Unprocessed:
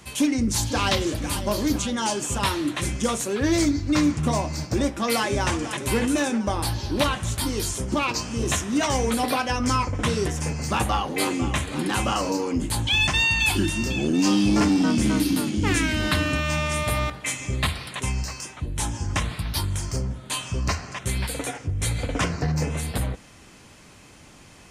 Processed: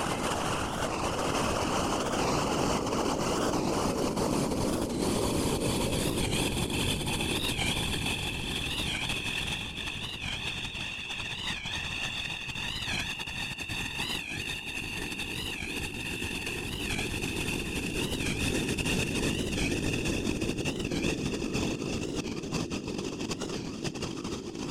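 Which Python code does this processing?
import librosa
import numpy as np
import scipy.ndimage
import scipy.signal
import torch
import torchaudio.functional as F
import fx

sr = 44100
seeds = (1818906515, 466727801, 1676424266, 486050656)

y = fx.paulstretch(x, sr, seeds[0], factor=11.0, window_s=1.0, from_s=12.07)
y = fx.whisperise(y, sr, seeds[1])
y = fx.over_compress(y, sr, threshold_db=-26.0, ratio=-0.5)
y = fx.echo_banded(y, sr, ms=630, feedback_pct=77, hz=390.0, wet_db=-14.0)
y = fx.record_warp(y, sr, rpm=45.0, depth_cents=160.0)
y = F.gain(torch.from_numpy(y), -5.0).numpy()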